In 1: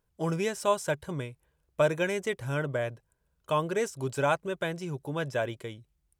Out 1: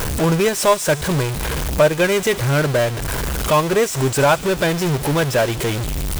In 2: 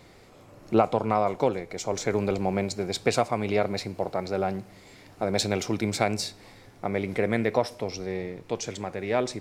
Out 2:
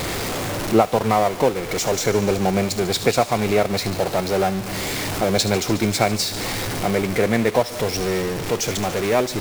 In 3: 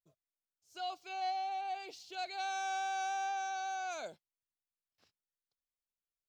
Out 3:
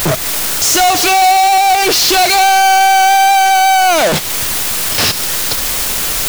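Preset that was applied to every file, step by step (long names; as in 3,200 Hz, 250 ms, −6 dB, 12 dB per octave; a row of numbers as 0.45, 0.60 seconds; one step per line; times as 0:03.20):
converter with a step at zero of −24 dBFS
transient designer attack 0 dB, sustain −12 dB
delay with a high-pass on its return 73 ms, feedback 78%, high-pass 3,300 Hz, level −12 dB
normalise the peak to −3 dBFS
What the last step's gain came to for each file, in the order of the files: +8.5, +4.0, +18.5 decibels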